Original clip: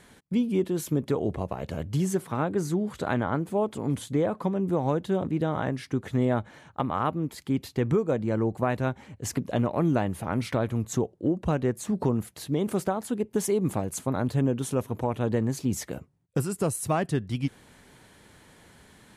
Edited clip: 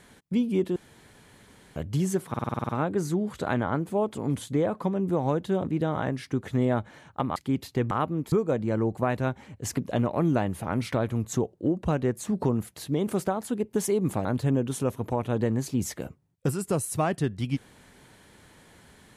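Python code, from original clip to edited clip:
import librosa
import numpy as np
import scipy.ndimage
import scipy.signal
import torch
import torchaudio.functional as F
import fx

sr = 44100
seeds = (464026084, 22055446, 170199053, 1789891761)

y = fx.edit(x, sr, fx.room_tone_fill(start_s=0.76, length_s=1.0),
    fx.stutter(start_s=2.29, slice_s=0.05, count=9),
    fx.move(start_s=6.96, length_s=0.41, to_s=7.92),
    fx.cut(start_s=13.85, length_s=0.31), tone=tone)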